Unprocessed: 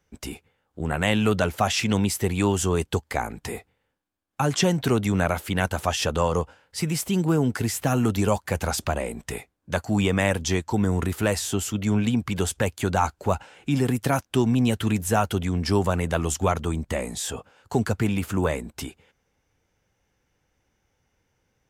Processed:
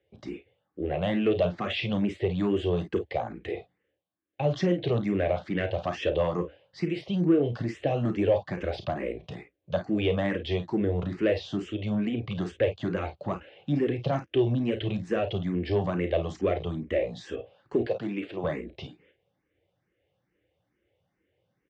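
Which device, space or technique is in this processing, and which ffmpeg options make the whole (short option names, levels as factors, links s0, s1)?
barber-pole phaser into a guitar amplifier: -filter_complex "[0:a]asettb=1/sr,asplit=3[s0][s1][s2];[s0]atrim=end=17.814[s3];[s1]atrim=start=17.81:end=18.44,asetpts=PTS-STARTPTS,afade=t=in:d=0.004:c=qsin,afade=t=out:st=0.626:d=0.004:c=qsin,highpass=280[s4];[s2]atrim=start=18.436[s5];[s3][s4]acrossfade=d=0.004:c1=hsin:c2=qsin[s6];[s6][s5]acrossfade=d=0.004:c1=qsin:c2=hsin,aecho=1:1:34|51:0.316|0.251,asplit=2[s7][s8];[s8]afreqshift=2.3[s9];[s7][s9]amix=inputs=2:normalize=1,asoftclip=type=tanh:threshold=0.158,highpass=100,equalizer=f=240:t=q:w=4:g=-6,equalizer=f=340:t=q:w=4:g=6,equalizer=f=560:t=q:w=4:g=6,equalizer=f=930:t=q:w=4:g=-10,equalizer=f=1400:t=q:w=4:g=-9,equalizer=f=2400:t=q:w=4:g=-3,lowpass=f=3500:w=0.5412,lowpass=f=3500:w=1.3066"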